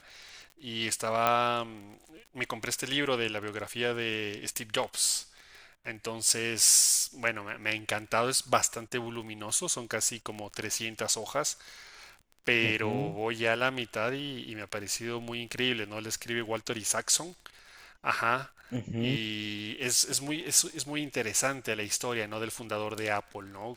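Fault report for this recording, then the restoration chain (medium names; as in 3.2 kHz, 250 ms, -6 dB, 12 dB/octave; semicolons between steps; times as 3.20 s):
crackle 23 per s -39 dBFS
1.27 s: pop -11 dBFS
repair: de-click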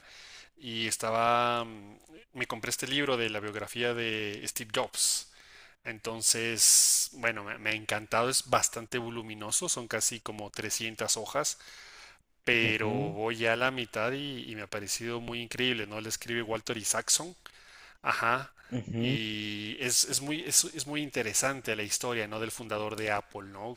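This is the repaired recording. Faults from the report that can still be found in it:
nothing left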